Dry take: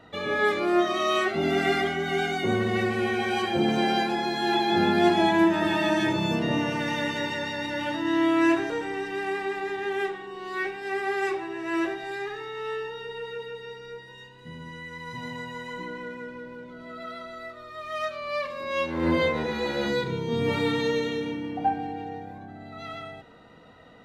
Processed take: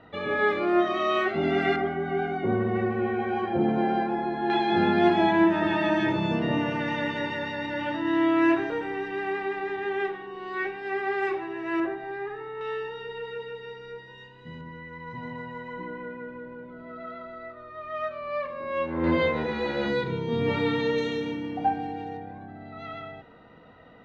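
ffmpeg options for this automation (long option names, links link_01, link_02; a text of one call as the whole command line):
ffmpeg -i in.wav -af "asetnsamples=nb_out_samples=441:pad=0,asendcmd='1.76 lowpass f 1300;4.5 lowpass f 2900;11.8 lowpass f 1600;12.61 lowpass f 3500;14.61 lowpass f 1800;19.04 lowpass f 3500;20.98 lowpass f 6600;22.17 lowpass f 2900',lowpass=2800" out.wav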